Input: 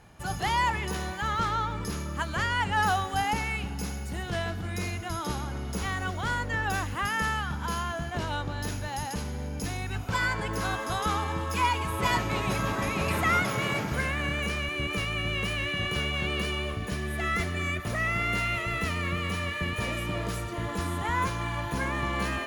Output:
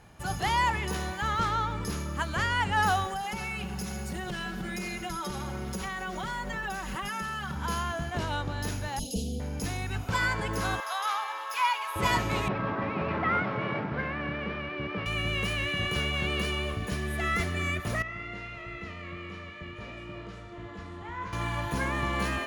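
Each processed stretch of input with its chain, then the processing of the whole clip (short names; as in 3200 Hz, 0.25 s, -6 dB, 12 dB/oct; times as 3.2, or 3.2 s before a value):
3.06–7.56 comb 5.3 ms, depth 92% + compressor 10:1, threshold -30 dBFS + modulation noise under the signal 32 dB
8.99–9.4 elliptic band-stop 630–3100 Hz + comb 4.3 ms, depth 96%
10.8–11.96 HPF 710 Hz 24 dB/oct + bell 8100 Hz -9.5 dB 0.53 oct
12.48–15.06 CVSD 32 kbps + BPF 120–2000 Hz + air absorption 110 m
18.02–21.33 air absorption 130 m + resonator 50 Hz, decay 1.2 s, mix 80%
whole clip: dry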